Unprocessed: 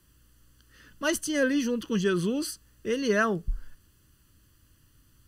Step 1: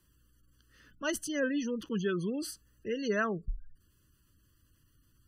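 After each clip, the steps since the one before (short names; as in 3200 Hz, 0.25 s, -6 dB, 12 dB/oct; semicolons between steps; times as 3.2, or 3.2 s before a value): spectral gate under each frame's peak -30 dB strong; gain -6 dB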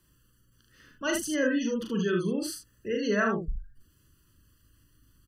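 early reflections 39 ms -4 dB, 75 ms -5.5 dB; gain +2.5 dB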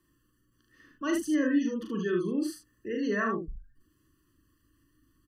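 small resonant body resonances 310/1100/1800 Hz, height 13 dB, ringing for 30 ms; gain -8 dB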